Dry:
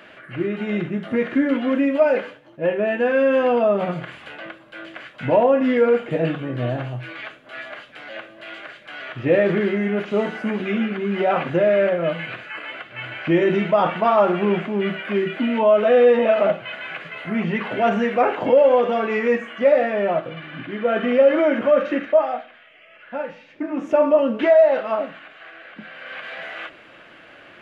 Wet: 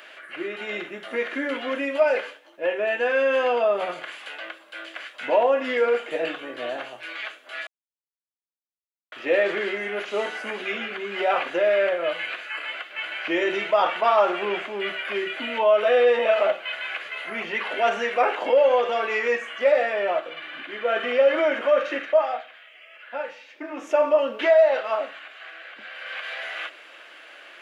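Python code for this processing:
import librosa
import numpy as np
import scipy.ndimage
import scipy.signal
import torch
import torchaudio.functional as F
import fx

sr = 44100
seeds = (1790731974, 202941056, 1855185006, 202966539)

y = fx.edit(x, sr, fx.silence(start_s=7.67, length_s=1.45), tone=tone)
y = scipy.signal.sosfilt(scipy.signal.bessel(4, 500.0, 'highpass', norm='mag', fs=sr, output='sos'), y)
y = fx.high_shelf(y, sr, hz=3400.0, db=11.0)
y = y * 10.0 ** (-1.5 / 20.0)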